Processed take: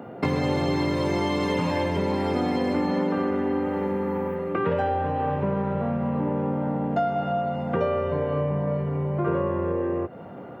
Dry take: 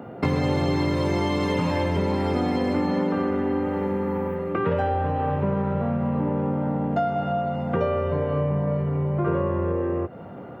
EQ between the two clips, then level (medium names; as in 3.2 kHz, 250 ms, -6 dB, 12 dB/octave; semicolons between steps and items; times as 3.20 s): high-pass 130 Hz 6 dB/octave; band-stop 1.3 kHz, Q 20; 0.0 dB